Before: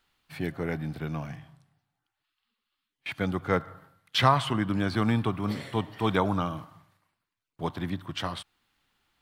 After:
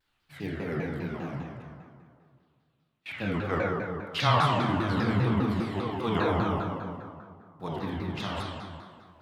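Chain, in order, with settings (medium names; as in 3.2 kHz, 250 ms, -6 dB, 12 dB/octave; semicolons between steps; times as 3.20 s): reverberation RT60 2.2 s, pre-delay 23 ms, DRR -5.5 dB; vibrato with a chosen wave saw down 5 Hz, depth 250 cents; trim -6.5 dB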